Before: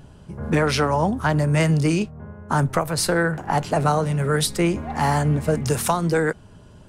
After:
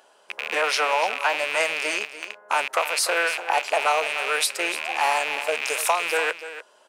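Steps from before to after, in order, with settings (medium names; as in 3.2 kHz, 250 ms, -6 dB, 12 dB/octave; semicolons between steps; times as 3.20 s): rattle on loud lows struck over -31 dBFS, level -15 dBFS; high-pass 530 Hz 24 dB/octave; delay 295 ms -13 dB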